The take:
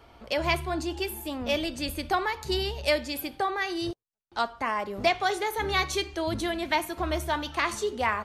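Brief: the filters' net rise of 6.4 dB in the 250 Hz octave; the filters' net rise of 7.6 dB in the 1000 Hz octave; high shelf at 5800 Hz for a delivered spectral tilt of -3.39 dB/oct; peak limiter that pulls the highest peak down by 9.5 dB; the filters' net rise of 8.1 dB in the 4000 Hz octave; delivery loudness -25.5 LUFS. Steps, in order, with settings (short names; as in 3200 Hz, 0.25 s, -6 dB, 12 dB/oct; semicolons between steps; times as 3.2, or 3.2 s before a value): bell 250 Hz +8.5 dB; bell 1000 Hz +8.5 dB; bell 4000 Hz +8 dB; high shelf 5800 Hz +4.5 dB; gain -0.5 dB; limiter -14.5 dBFS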